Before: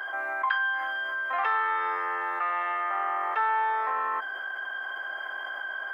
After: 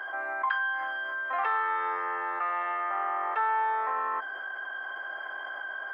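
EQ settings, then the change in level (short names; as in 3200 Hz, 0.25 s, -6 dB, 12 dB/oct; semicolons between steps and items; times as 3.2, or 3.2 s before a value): high shelf 2500 Hz -8.5 dB; 0.0 dB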